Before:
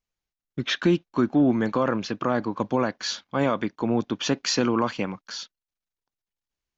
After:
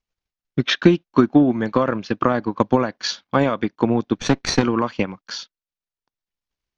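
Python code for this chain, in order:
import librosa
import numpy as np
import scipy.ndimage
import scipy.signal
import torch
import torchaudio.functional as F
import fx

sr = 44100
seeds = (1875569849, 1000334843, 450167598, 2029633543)

y = fx.lower_of_two(x, sr, delay_ms=0.5, at=(4.15, 4.63))
y = scipy.signal.sosfilt(scipy.signal.butter(4, 6300.0, 'lowpass', fs=sr, output='sos'), y)
y = fx.transient(y, sr, attack_db=8, sustain_db=-6)
y = F.gain(torch.from_numpy(y), 2.0).numpy()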